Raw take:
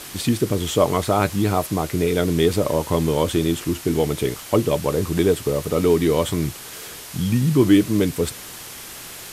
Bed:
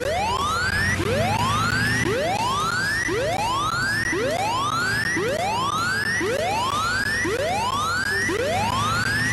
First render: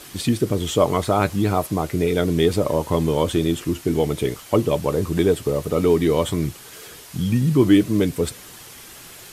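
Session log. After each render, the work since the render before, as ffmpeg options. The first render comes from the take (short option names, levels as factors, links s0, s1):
-af "afftdn=nr=6:nf=-37"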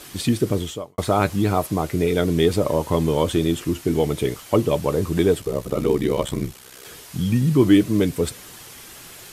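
-filter_complex "[0:a]asplit=3[s0][s1][s2];[s0]afade=t=out:st=5.4:d=0.02[s3];[s1]aeval=exprs='val(0)*sin(2*PI*32*n/s)':c=same,afade=t=in:st=5.4:d=0.02,afade=t=out:st=6.84:d=0.02[s4];[s2]afade=t=in:st=6.84:d=0.02[s5];[s3][s4][s5]amix=inputs=3:normalize=0,asplit=2[s6][s7];[s6]atrim=end=0.98,asetpts=PTS-STARTPTS,afade=t=out:st=0.58:d=0.4:c=qua[s8];[s7]atrim=start=0.98,asetpts=PTS-STARTPTS,afade=t=in:d=0.004:c=hsin[s9];[s8][s9]concat=n=2:v=0:a=1"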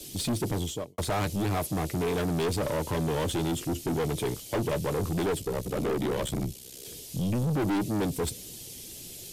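-filter_complex "[0:a]acrossover=split=170|570|2800[s0][s1][s2][s3];[s2]aeval=exprs='sgn(val(0))*max(abs(val(0))-0.00944,0)':c=same[s4];[s0][s1][s4][s3]amix=inputs=4:normalize=0,aeval=exprs='(tanh(17.8*val(0)+0.15)-tanh(0.15))/17.8':c=same"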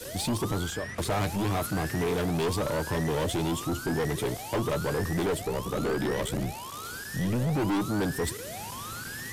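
-filter_complex "[1:a]volume=0.133[s0];[0:a][s0]amix=inputs=2:normalize=0"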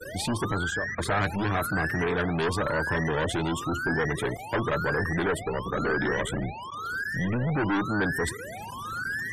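-af "afftfilt=real='re*gte(hypot(re,im),0.0126)':imag='im*gte(hypot(re,im),0.0126)':win_size=1024:overlap=0.75,equalizer=f=1600:t=o:w=0.75:g=11"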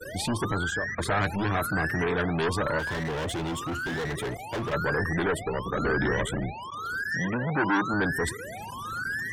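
-filter_complex "[0:a]asplit=3[s0][s1][s2];[s0]afade=t=out:st=2.78:d=0.02[s3];[s1]volume=26.6,asoftclip=hard,volume=0.0376,afade=t=in:st=2.78:d=0.02,afade=t=out:st=4.72:d=0.02[s4];[s2]afade=t=in:st=4.72:d=0.02[s5];[s3][s4][s5]amix=inputs=3:normalize=0,asettb=1/sr,asplit=3[s6][s7][s8];[s6]atrim=end=5.844[s9];[s7]atrim=start=5.84:end=6.24,asetpts=PTS-STARTPTS,afade=t=in:d=0.004:c=qsin,afade=t=out:st=0.396:d=0.004:c=qsin,equalizer=f=75:w=0.9:g=9.5[s10];[s8]atrim=start=6.236[s11];[s9][s10]acrossfade=d=0.004:c1=hsin:c2=qsin[s12];[s12][s11]acrossfade=d=0.004:c1=qsin:c2=hsin,asettb=1/sr,asplit=3[s13][s14][s15];[s13]atrim=end=7.114[s16];[s14]atrim=start=7.11:end=7.94,asetpts=PTS-STARTPTS,afade=t=in:d=0.004:c=qsin,afade=t=out:st=0.826:d=0.004:c=qsin,highpass=150,equalizer=f=970:t=q:w=4:g=6,equalizer=f=1600:t=q:w=4:g=6,equalizer=f=5600:t=q:w=4:g=8,lowpass=f=8500:w=0.5412,lowpass=f=8500:w=1.3066[s17];[s15]atrim=start=7.936[s18];[s16][s17]acrossfade=d=0.004:c1=hsin:c2=qsin[s19];[s19][s18]acrossfade=d=0.004:c1=qsin:c2=hsin"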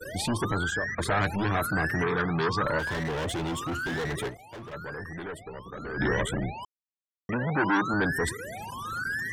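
-filter_complex "[0:a]asettb=1/sr,asplit=3[s0][s1][s2];[s0]atrim=end=2.034[s3];[s1]atrim=start=2.03:end=2.65,asetpts=PTS-STARTPTS,afade=t=in:d=0.004:c=qsin,afade=t=out:st=0.616:d=0.004:c=qsin,highpass=110,equalizer=f=130:t=q:w=4:g=10,equalizer=f=270:t=q:w=4:g=-4,equalizer=f=630:t=q:w=4:g=-9,equalizer=f=1200:t=q:w=4:g=6,equalizer=f=2800:t=q:w=4:g=-7,equalizer=f=5100:t=q:w=4:g=5,lowpass=f=6100:w=0.5412,lowpass=f=6100:w=1.3066[s4];[s2]atrim=start=2.646[s5];[s3][s4]acrossfade=d=0.004:c1=hsin:c2=qsin[s6];[s6][s5]acrossfade=d=0.004:c1=qsin:c2=hsin,asplit=5[s7][s8][s9][s10][s11];[s7]atrim=end=4.57,asetpts=PTS-STARTPTS,afade=t=out:st=4.27:d=0.3:c=exp:silence=0.281838[s12];[s8]atrim=start=4.57:end=5.71,asetpts=PTS-STARTPTS,volume=0.282[s13];[s9]atrim=start=5.71:end=6.65,asetpts=PTS-STARTPTS,afade=t=in:d=0.3:c=exp:silence=0.281838,afade=t=out:st=0.936:d=0.004:c=hsin[s14];[s10]atrim=start=6.65:end=7.29,asetpts=PTS-STARTPTS,volume=0[s15];[s11]atrim=start=7.29,asetpts=PTS-STARTPTS,afade=t=in:d=0.004:c=hsin[s16];[s12][s13][s14][s15][s16]concat=n=5:v=0:a=1"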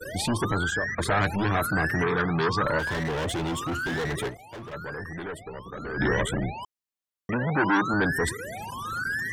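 -af "volume=1.26"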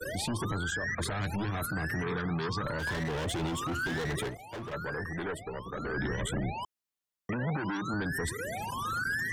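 -filter_complex "[0:a]acrossover=split=250|3000[s0][s1][s2];[s1]acompressor=threshold=0.0355:ratio=6[s3];[s0][s3][s2]amix=inputs=3:normalize=0,alimiter=level_in=1.06:limit=0.0631:level=0:latency=1:release=100,volume=0.944"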